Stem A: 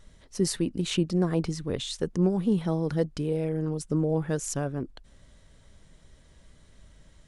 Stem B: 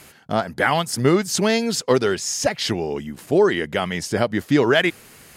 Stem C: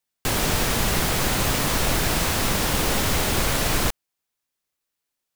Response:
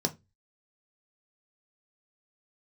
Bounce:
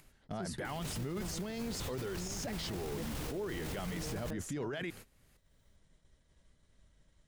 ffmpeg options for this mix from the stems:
-filter_complex "[0:a]agate=range=-33dB:threshold=-49dB:ratio=3:detection=peak,volume=-12dB[a];[1:a]agate=range=-24dB:threshold=-34dB:ratio=16:detection=peak,volume=0.5dB[b];[2:a]adelay=400,volume=-7dB[c];[b][c]amix=inputs=2:normalize=0,equalizer=f=80:w=0.33:g=7.5,acompressor=threshold=-45dB:ratio=1.5,volume=0dB[d];[a][d]amix=inputs=2:normalize=0,acompressor=mode=upward:threshold=-59dB:ratio=2.5,alimiter=level_in=7dB:limit=-24dB:level=0:latency=1:release=13,volume=-7dB"

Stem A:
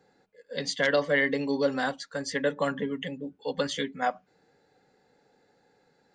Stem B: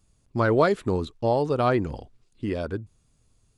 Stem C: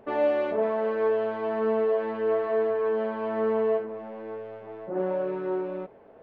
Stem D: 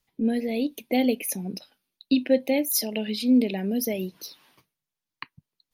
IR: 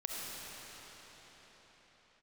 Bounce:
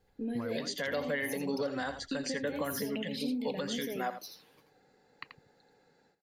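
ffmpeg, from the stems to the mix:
-filter_complex "[0:a]dynaudnorm=f=190:g=3:m=9.5dB,volume=-10.5dB,asplit=2[a][b];[b]volume=-13dB[c];[1:a]acompressor=threshold=-35dB:ratio=3,lowpass=2.7k,volume=-9dB[d];[3:a]flanger=delay=0.9:depth=8.9:regen=38:speed=0.59:shape=sinusoidal,acompressor=threshold=-30dB:ratio=6,volume=-3dB,asplit=2[e][f];[f]volume=-8.5dB[g];[c][g]amix=inputs=2:normalize=0,aecho=0:1:84:1[h];[a][d][e][h]amix=inputs=4:normalize=0,alimiter=limit=-24dB:level=0:latency=1:release=211"

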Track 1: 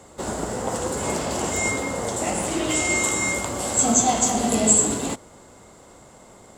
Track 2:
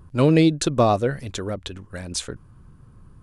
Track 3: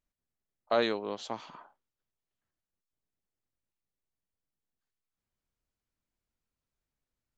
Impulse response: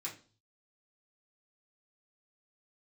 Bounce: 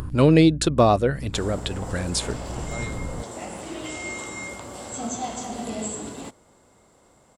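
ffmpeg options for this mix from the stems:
-filter_complex "[0:a]bandreject=f=6.7k:w=16,acrossover=split=6600[a][b];[b]acompressor=threshold=-38dB:ratio=4:attack=1:release=60[c];[a][c]amix=inputs=2:normalize=0,adelay=1150,volume=-9.5dB[d];[1:a]bandreject=f=6.1k:w=12,acompressor=mode=upward:threshold=-22dB:ratio=2.5,aeval=exprs='val(0)+0.0178*(sin(2*PI*60*n/s)+sin(2*PI*2*60*n/s)/2+sin(2*PI*3*60*n/s)/3+sin(2*PI*4*60*n/s)/4+sin(2*PI*5*60*n/s)/5)':c=same,volume=1dB[e];[2:a]adelay=2000,volume=-11.5dB[f];[d][e][f]amix=inputs=3:normalize=0"

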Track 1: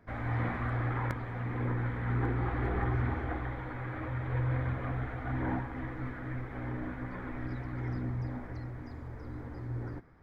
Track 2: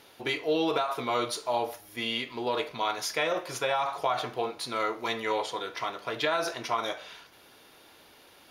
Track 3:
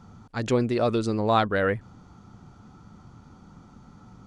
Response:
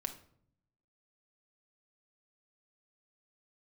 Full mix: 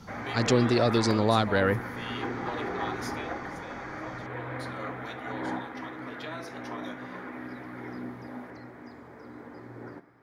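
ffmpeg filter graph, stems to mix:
-filter_complex "[0:a]highpass=250,volume=-1dB,asplit=2[a][b];[b]volume=-3.5dB[c];[1:a]volume=-3dB,afade=t=out:st=3.04:d=0.34:silence=0.316228,afade=t=in:st=4.25:d=0.38:silence=0.446684[d];[2:a]equalizer=f=5k:w=1.4:g=10.5,acrossover=split=320[e][f];[f]acompressor=threshold=-24dB:ratio=2.5[g];[e][g]amix=inputs=2:normalize=0,volume=1dB[h];[3:a]atrim=start_sample=2205[i];[c][i]afir=irnorm=-1:irlink=0[j];[a][d][h][j]amix=inputs=4:normalize=0"

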